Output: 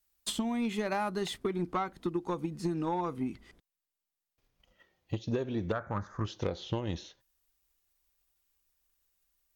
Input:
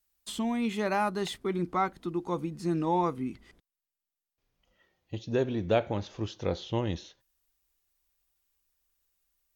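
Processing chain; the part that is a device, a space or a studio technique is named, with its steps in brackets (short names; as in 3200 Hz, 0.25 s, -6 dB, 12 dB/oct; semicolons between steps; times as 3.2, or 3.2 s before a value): 5.72–6.25 EQ curve 190 Hz 0 dB, 340 Hz -8 dB, 820 Hz -3 dB, 1200 Hz +12 dB, 1800 Hz +4 dB, 2800 Hz -27 dB, 6800 Hz -6 dB; drum-bus smash (transient shaper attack +8 dB, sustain 0 dB; compressor 12:1, threshold -26 dBFS, peak gain reduction 11 dB; soft clip -22 dBFS, distortion -18 dB)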